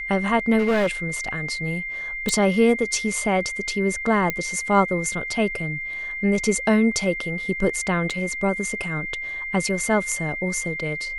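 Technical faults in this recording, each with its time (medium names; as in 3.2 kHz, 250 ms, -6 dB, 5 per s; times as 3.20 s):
whine 2.1 kHz -28 dBFS
0.58–0.87 s: clipped -16.5 dBFS
2.29 s: pop -8 dBFS
4.30 s: pop -9 dBFS
8.10–8.11 s: dropout 5.2 ms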